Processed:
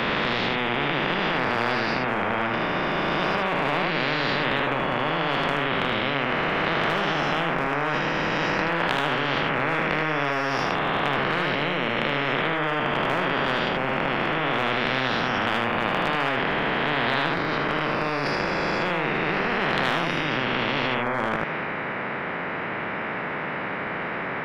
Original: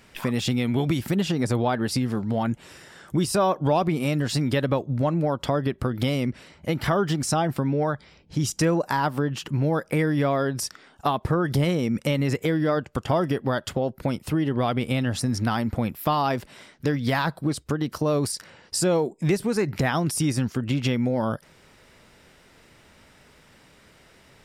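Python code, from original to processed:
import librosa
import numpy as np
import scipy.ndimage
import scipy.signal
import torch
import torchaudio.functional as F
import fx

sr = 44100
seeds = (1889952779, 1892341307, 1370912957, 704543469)

p1 = fx.spec_swells(x, sr, rise_s=2.89)
p2 = scipy.signal.sosfilt(scipy.signal.ellip(3, 1.0, 60, [170.0, 1800.0], 'bandpass', fs=sr, output='sos'), p1)
p3 = fx.over_compress(p2, sr, threshold_db=-32.0, ratio=-1.0)
p4 = p2 + F.gain(torch.from_numpy(p3), -3.0).numpy()
p5 = fx.transient(p4, sr, attack_db=-6, sustain_db=3)
p6 = p5 + fx.echo_single(p5, sr, ms=77, db=-4.5, dry=0)
y = fx.spectral_comp(p6, sr, ratio=4.0)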